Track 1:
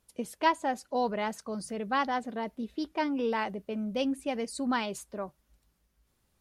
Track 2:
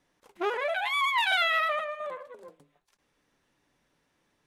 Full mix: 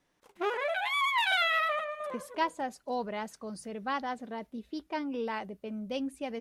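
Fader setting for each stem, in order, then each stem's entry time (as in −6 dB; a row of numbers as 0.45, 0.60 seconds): −4.5, −2.0 decibels; 1.95, 0.00 seconds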